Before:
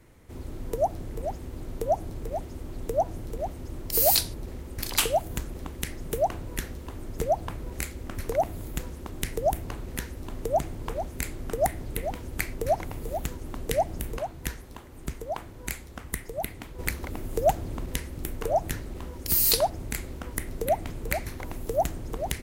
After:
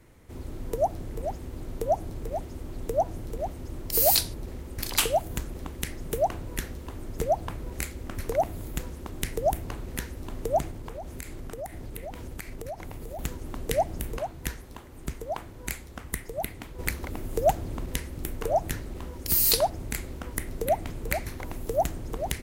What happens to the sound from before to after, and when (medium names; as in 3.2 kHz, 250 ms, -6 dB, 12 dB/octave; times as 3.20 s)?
10.70–13.19 s: compression 5:1, threshold -34 dBFS